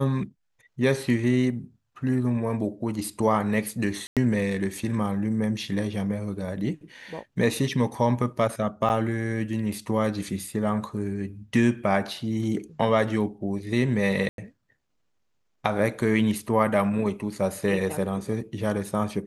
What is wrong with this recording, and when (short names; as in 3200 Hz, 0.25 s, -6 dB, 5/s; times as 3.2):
4.07–4.17 gap 97 ms
8.89–8.9 gap 8.3 ms
14.29–14.38 gap 92 ms